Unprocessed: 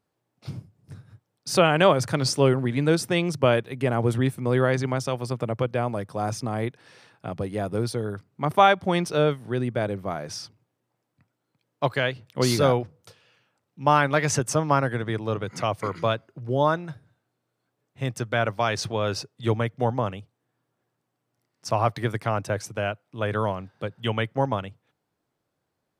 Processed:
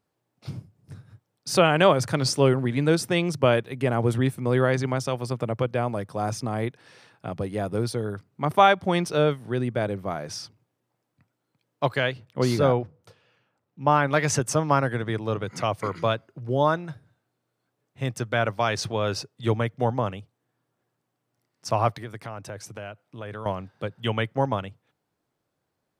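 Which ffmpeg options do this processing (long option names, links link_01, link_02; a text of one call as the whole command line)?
ffmpeg -i in.wav -filter_complex "[0:a]asettb=1/sr,asplit=3[link_01][link_02][link_03];[link_01]atrim=end=12.254[link_04];[link_02]atrim=start=12.25:end=14.08,asetpts=PTS-STARTPTS,afade=type=in:duration=0.004:curve=qsin,afade=type=out:start_time=1.826:duration=0.004:curve=qsin,highshelf=frequency=2700:gain=-9.5[link_05];[link_03]atrim=start=14.076[link_06];[link_04][link_05]acrossfade=duration=0.004:curve1=hsin:curve2=qsin[link_07];[link_07][link_06]acrossfade=duration=0.004:curve1=qsin:curve2=hsin,asettb=1/sr,asplit=3[link_08][link_09][link_10];[link_08]atrim=end=21.964[link_11];[link_09]atrim=start=21.96:end=23.46,asetpts=PTS-STARTPTS,afade=type=in:duration=0.004:curve=qsin,afade=type=out:start_time=1.496:duration=0.004:curve=qsin,acompressor=threshold=-37dB:ratio=2.5:attack=3.2:release=140:knee=1:detection=peak[link_12];[link_10]atrim=start=23.456[link_13];[link_11][link_12]acrossfade=duration=0.004:curve1=hsin:curve2=qsin[link_14];[link_14][link_13]acrossfade=duration=0.004:curve1=qsin:curve2=hsin" out.wav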